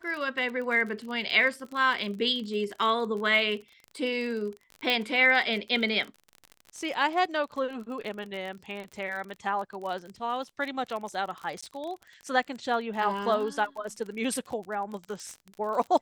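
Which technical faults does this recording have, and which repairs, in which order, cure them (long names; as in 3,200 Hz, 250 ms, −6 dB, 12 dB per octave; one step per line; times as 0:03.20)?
surface crackle 40 per second −34 dBFS
0:04.90: click −14 dBFS
0:11.61–0:11.62: drop-out 15 ms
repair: click removal
repair the gap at 0:11.61, 15 ms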